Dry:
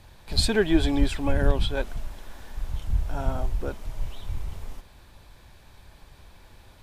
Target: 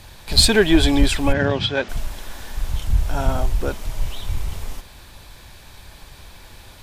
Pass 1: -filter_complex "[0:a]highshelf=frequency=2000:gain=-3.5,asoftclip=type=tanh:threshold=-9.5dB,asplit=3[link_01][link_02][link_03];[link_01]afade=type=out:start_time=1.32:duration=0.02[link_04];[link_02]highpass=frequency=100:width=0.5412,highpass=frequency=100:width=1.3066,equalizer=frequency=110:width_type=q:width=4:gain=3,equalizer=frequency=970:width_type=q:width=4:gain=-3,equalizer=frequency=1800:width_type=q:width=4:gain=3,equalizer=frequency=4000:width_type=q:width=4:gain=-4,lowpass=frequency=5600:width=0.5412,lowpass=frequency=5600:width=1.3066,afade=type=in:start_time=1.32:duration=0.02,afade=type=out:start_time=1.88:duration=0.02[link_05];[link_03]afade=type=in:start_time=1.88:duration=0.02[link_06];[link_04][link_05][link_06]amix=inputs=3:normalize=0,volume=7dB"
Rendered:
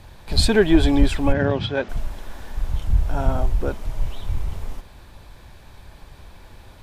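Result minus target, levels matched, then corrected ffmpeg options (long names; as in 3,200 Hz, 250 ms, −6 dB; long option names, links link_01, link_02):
4,000 Hz band −5.5 dB
-filter_complex "[0:a]highshelf=frequency=2000:gain=7,asoftclip=type=tanh:threshold=-9.5dB,asplit=3[link_01][link_02][link_03];[link_01]afade=type=out:start_time=1.32:duration=0.02[link_04];[link_02]highpass=frequency=100:width=0.5412,highpass=frequency=100:width=1.3066,equalizer=frequency=110:width_type=q:width=4:gain=3,equalizer=frequency=970:width_type=q:width=4:gain=-3,equalizer=frequency=1800:width_type=q:width=4:gain=3,equalizer=frequency=4000:width_type=q:width=4:gain=-4,lowpass=frequency=5600:width=0.5412,lowpass=frequency=5600:width=1.3066,afade=type=in:start_time=1.32:duration=0.02,afade=type=out:start_time=1.88:duration=0.02[link_05];[link_03]afade=type=in:start_time=1.88:duration=0.02[link_06];[link_04][link_05][link_06]amix=inputs=3:normalize=0,volume=7dB"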